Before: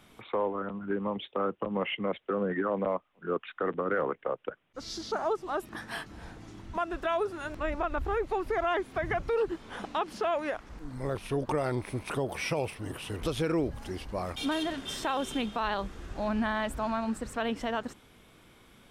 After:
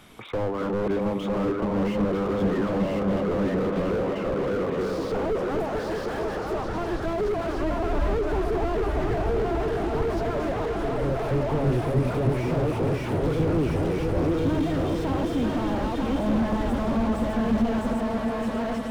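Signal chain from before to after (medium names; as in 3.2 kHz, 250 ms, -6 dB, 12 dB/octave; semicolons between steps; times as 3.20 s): chunks repeated in reverse 606 ms, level -1.5 dB; delay with an opening low-pass 314 ms, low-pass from 200 Hz, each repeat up 2 oct, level -3 dB; slew-rate limiter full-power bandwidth 14 Hz; trim +7 dB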